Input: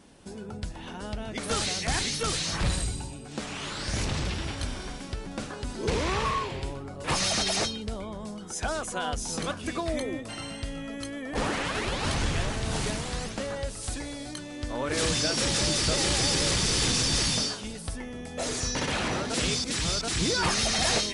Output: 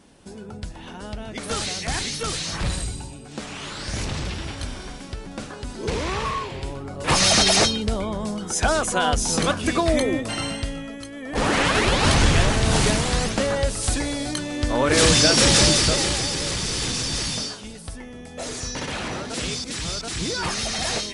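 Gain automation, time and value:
6.51 s +1.5 dB
7.32 s +10 dB
10.47 s +10 dB
11.09 s -1.5 dB
11.6 s +10.5 dB
15.61 s +10.5 dB
16.3 s -0.5 dB

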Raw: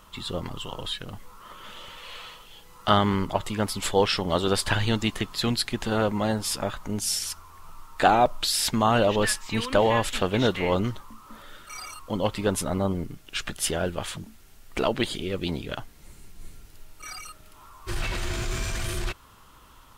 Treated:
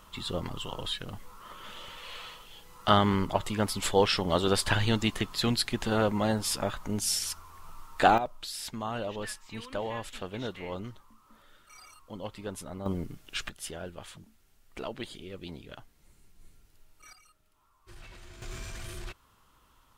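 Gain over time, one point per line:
-2 dB
from 8.18 s -13.5 dB
from 12.86 s -4 dB
from 13.49 s -13 dB
from 17.13 s -20 dB
from 18.42 s -11 dB

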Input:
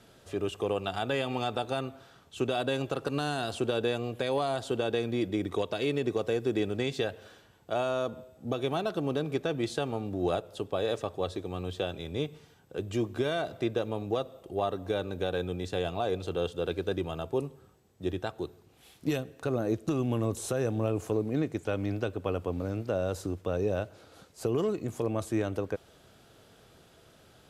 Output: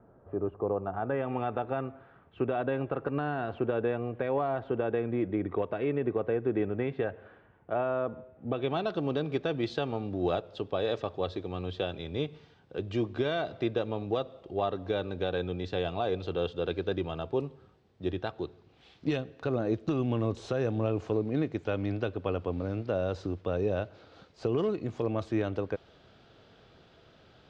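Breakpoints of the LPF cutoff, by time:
LPF 24 dB/oct
0.81 s 1200 Hz
1.37 s 2100 Hz
8.35 s 2100 Hz
8.85 s 4700 Hz

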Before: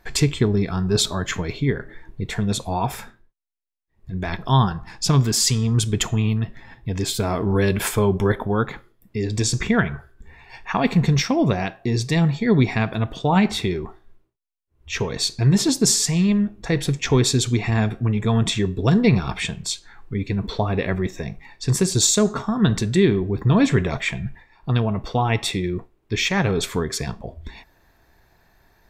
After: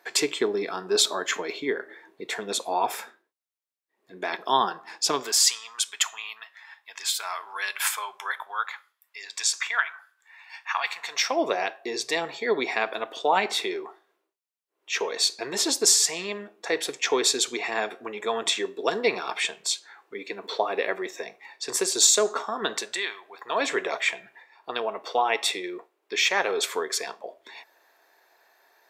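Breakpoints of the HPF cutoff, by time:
HPF 24 dB/oct
5.13 s 350 Hz
5.61 s 1000 Hz
10.99 s 1000 Hz
11.4 s 410 Hz
22.72 s 410 Hz
23.19 s 950 Hz
23.7 s 430 Hz

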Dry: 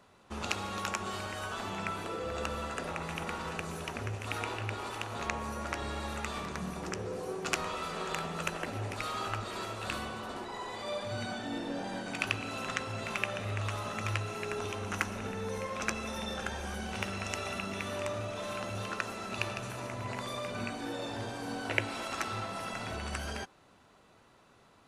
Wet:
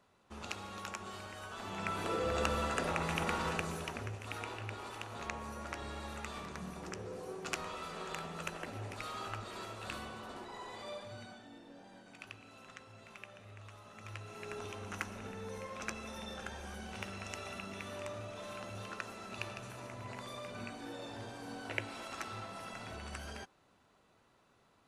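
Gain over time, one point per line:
1.5 s -8.5 dB
2.12 s +2.5 dB
3.48 s +2.5 dB
4.2 s -6.5 dB
10.82 s -6.5 dB
11.57 s -18 dB
13.86 s -18 dB
14.51 s -7.5 dB

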